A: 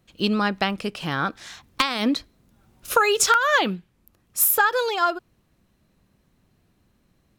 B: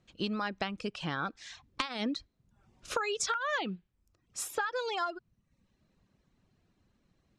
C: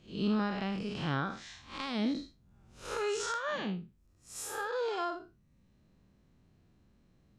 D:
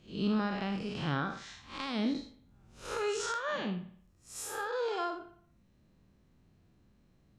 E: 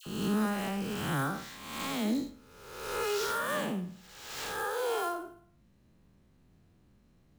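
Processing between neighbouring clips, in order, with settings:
low-pass 7.6 kHz 24 dB/octave; reverb removal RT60 0.62 s; compression 4:1, threshold -25 dBFS, peak gain reduction 10 dB; trim -5.5 dB
spectral blur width 159 ms; bass shelf 480 Hz +6 dB; trim +2.5 dB
reverberation, pre-delay 55 ms, DRR 12.5 dB
reverse spectral sustain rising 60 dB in 1.11 s; sample-rate reducer 11 kHz, jitter 20%; phase dispersion lows, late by 66 ms, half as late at 1.4 kHz

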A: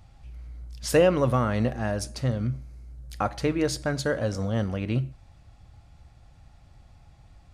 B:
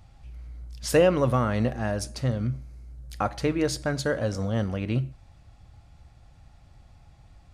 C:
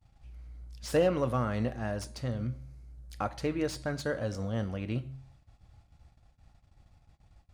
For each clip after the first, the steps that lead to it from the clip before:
no audible change
de-hum 132.4 Hz, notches 35; gate -51 dBFS, range -23 dB; slew-rate limiter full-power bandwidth 140 Hz; trim -6 dB

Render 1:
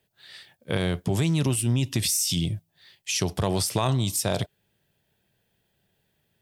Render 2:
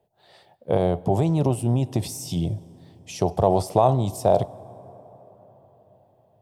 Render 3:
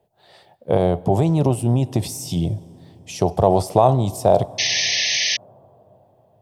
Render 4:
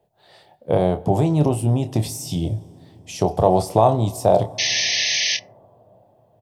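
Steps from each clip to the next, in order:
FFT filter 270 Hz 0 dB, 750 Hz +12 dB, 1.6 kHz -12 dB; plate-style reverb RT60 4.9 s, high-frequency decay 0.4×, DRR 19.5 dB; trim +1.5 dB
painted sound noise, 4.58–5.37 s, 1.7–6.4 kHz -24 dBFS; trim +3.5 dB
doubling 27 ms -9 dB; FDN reverb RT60 0.44 s, high-frequency decay 0.45×, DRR 16 dB; trim -1 dB

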